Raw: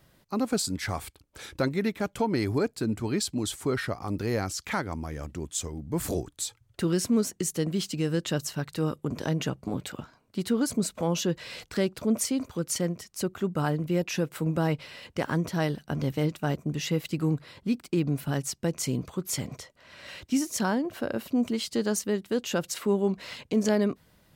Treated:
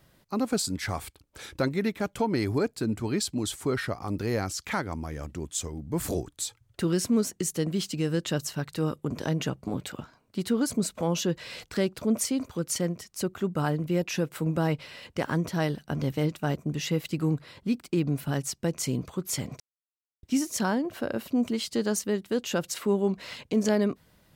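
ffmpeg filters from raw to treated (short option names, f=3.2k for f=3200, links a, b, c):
-filter_complex "[0:a]asplit=3[a][b][c];[a]atrim=end=19.6,asetpts=PTS-STARTPTS,afade=t=out:st=19.596:d=0.004:c=hsin[d];[b]atrim=start=19.6:end=20.23,asetpts=PTS-STARTPTS,volume=0[e];[c]atrim=start=20.23,asetpts=PTS-STARTPTS,afade=t=in:d=0.004:c=hsin[f];[d][e][f]concat=n=3:v=0:a=1"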